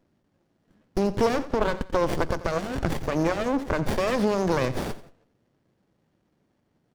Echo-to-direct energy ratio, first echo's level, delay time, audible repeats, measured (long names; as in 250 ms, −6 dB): −15.5 dB, −16.0 dB, 88 ms, 2